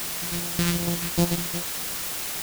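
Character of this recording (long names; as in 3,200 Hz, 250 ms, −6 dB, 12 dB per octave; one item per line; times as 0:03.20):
a buzz of ramps at a fixed pitch in blocks of 256 samples
phaser sweep stages 2, 2.6 Hz, lowest notch 620–1,700 Hz
tremolo saw down 1.7 Hz, depth 95%
a quantiser's noise floor 6 bits, dither triangular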